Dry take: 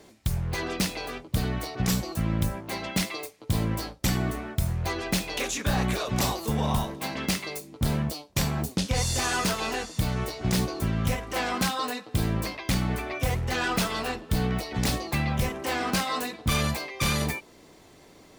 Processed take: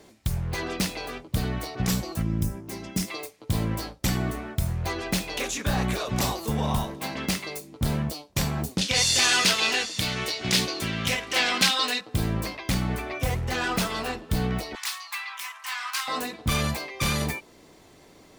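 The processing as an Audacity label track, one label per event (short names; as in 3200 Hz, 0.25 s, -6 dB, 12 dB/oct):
2.220000	3.080000	spectral gain 450–4800 Hz -9 dB
8.810000	12.010000	weighting filter D
14.750000	16.080000	elliptic high-pass 1000 Hz, stop band 70 dB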